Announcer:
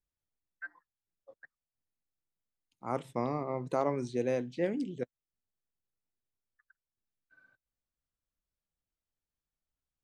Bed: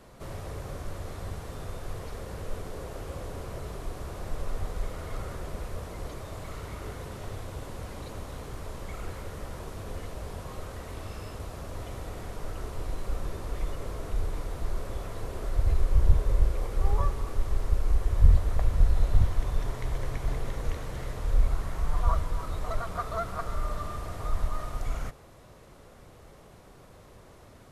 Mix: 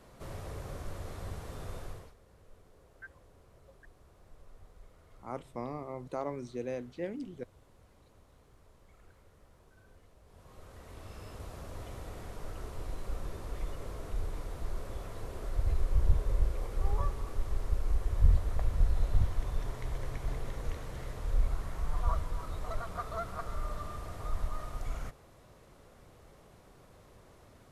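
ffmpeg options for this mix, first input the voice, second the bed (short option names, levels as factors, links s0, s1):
-filter_complex "[0:a]adelay=2400,volume=0.501[s0];[1:a]volume=4.47,afade=t=out:st=1.79:d=0.35:silence=0.11885,afade=t=in:st=10.25:d=1.25:silence=0.141254[s1];[s0][s1]amix=inputs=2:normalize=0"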